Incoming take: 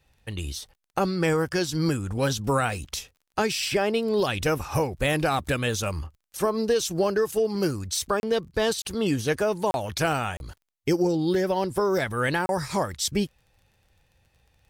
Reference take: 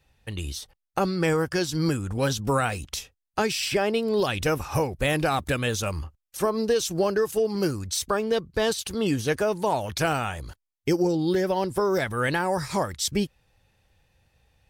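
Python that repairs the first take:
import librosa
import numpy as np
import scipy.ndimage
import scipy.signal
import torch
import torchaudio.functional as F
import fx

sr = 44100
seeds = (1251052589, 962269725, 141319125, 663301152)

y = fx.fix_declick_ar(x, sr, threshold=6.5)
y = fx.fix_interpolate(y, sr, at_s=(8.2, 8.82, 9.71, 10.37, 12.46), length_ms=31.0)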